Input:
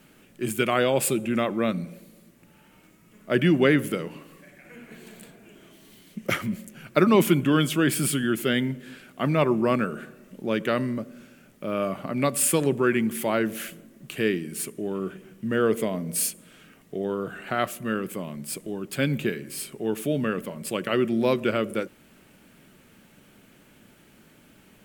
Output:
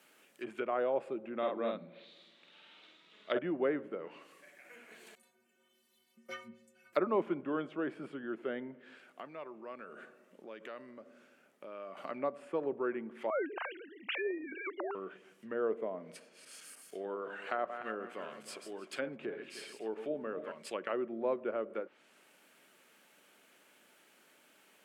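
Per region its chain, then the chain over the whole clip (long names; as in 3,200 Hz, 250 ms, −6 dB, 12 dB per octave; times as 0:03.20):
0:01.38–0:03.39: low-pass with resonance 3,700 Hz, resonance Q 8.5 + double-tracking delay 48 ms −2.5 dB
0:05.15–0:06.93: parametric band 170 Hz +11 dB 1.1 octaves + stiff-string resonator 110 Hz, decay 0.59 s, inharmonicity 0.03
0:08.75–0:11.97: high-shelf EQ 2,400 Hz −10.5 dB + downward compressor 4 to 1, threshold −34 dBFS
0:13.30–0:14.95: three sine waves on the formant tracks + every bin compressed towards the loudest bin 2 to 1
0:16.15–0:20.52: feedback delay that plays each chunk backwards 152 ms, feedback 55%, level −9.5 dB + low-shelf EQ 73 Hz −9 dB
whole clip: treble cut that deepens with the level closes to 890 Hz, closed at −22.5 dBFS; high-pass filter 510 Hz 12 dB per octave; level −5.5 dB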